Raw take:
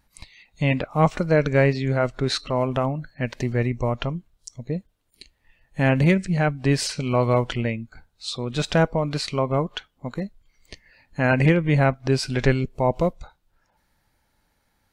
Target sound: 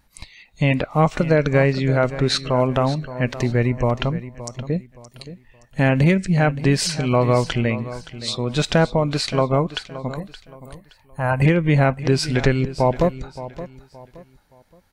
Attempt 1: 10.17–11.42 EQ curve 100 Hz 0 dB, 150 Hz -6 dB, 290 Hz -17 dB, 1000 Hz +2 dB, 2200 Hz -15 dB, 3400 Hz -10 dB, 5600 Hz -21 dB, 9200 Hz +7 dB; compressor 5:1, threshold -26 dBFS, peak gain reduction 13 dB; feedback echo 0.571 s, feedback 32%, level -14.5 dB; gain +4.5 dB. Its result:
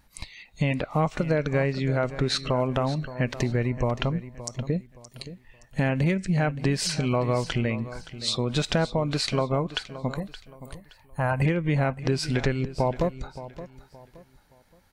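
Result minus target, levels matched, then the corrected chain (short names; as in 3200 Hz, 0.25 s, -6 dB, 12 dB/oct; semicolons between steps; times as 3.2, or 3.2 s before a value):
compressor: peak gain reduction +8 dB
10.17–11.42 EQ curve 100 Hz 0 dB, 150 Hz -6 dB, 290 Hz -17 dB, 1000 Hz +2 dB, 2200 Hz -15 dB, 3400 Hz -10 dB, 5600 Hz -21 dB, 9200 Hz +7 dB; compressor 5:1, threshold -16 dBFS, peak gain reduction 5 dB; feedback echo 0.571 s, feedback 32%, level -14.5 dB; gain +4.5 dB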